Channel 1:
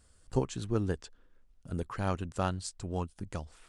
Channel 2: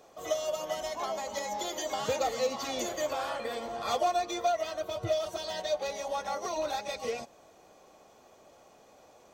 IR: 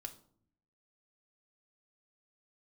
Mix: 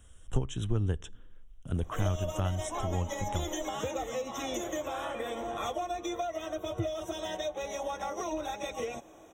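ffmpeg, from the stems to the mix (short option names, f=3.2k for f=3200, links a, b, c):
-filter_complex "[0:a]equalizer=f=3.1k:w=6:g=10,volume=3dB,asplit=2[a][b];[b]volume=-15dB[c];[1:a]equalizer=f=320:t=o:w=0.21:g=12.5,adelay=1750,volume=2dB[d];[2:a]atrim=start_sample=2205[e];[c][e]afir=irnorm=-1:irlink=0[f];[a][d][f]amix=inputs=3:normalize=0,lowshelf=f=69:g=8.5,acrossover=split=120[g][h];[h]acompressor=threshold=-32dB:ratio=5[i];[g][i]amix=inputs=2:normalize=0,asuperstop=centerf=4600:order=20:qfactor=3.2"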